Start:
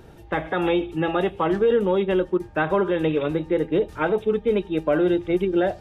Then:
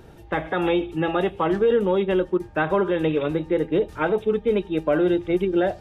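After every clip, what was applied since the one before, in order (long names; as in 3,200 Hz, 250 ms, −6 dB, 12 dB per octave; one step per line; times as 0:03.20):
no processing that can be heard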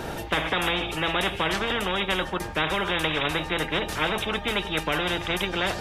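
every bin compressed towards the loudest bin 4 to 1
level +2 dB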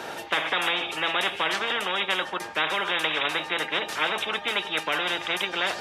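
meter weighting curve A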